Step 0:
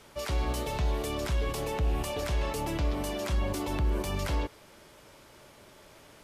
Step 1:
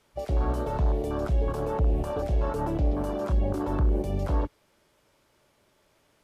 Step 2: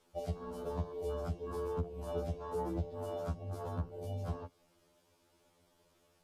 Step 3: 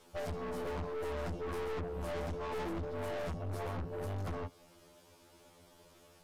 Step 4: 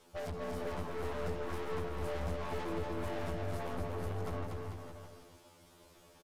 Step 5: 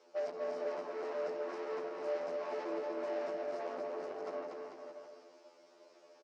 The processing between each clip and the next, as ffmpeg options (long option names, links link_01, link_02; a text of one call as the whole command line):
ffmpeg -i in.wav -af "afwtdn=0.0251,volume=4.5dB" out.wav
ffmpeg -i in.wav -af "acompressor=threshold=-29dB:ratio=5,equalizer=frequency=1900:width=1.1:gain=-5.5,afftfilt=real='re*2*eq(mod(b,4),0)':imag='im*2*eq(mod(b,4),0)':win_size=2048:overlap=0.75,volume=-1dB" out.wav
ffmpeg -i in.wav -af "aeval=exprs='(tanh(224*val(0)+0.35)-tanh(0.35))/224':channel_layout=same,volume=10.5dB" out.wav
ffmpeg -i in.wav -af "aecho=1:1:240|444|617.4|764.8|890.1:0.631|0.398|0.251|0.158|0.1,volume=-1.5dB" out.wav
ffmpeg -i in.wav -af "highpass=frequency=290:width=0.5412,highpass=frequency=290:width=1.3066,equalizer=frequency=380:width_type=q:width=4:gain=4,equalizer=frequency=600:width_type=q:width=4:gain=9,equalizer=frequency=3400:width_type=q:width=4:gain=-8,equalizer=frequency=5300:width_type=q:width=4:gain=4,lowpass=frequency=6000:width=0.5412,lowpass=frequency=6000:width=1.3066,volume=-3dB" out.wav